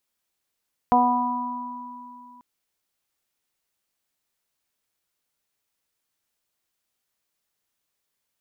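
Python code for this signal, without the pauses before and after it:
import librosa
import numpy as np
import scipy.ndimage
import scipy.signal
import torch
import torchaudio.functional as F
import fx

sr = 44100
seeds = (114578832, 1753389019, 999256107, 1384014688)

y = fx.additive(sr, length_s=1.49, hz=246.0, level_db=-21.0, upper_db=(-5.0, 5.0, 4.0, -15), decay_s=2.78, upper_decays_s=(0.56, 1.23, 2.97, 1.9))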